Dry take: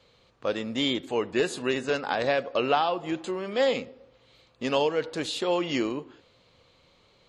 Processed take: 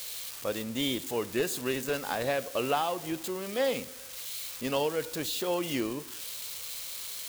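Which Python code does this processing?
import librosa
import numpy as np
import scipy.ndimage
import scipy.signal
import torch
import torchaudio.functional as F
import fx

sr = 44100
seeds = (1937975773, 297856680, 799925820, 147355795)

y = x + 0.5 * 10.0 ** (-24.0 / 20.0) * np.diff(np.sign(x), prepend=np.sign(x[:1]))
y = fx.low_shelf(y, sr, hz=100.0, db=11.0)
y = y * librosa.db_to_amplitude(-5.0)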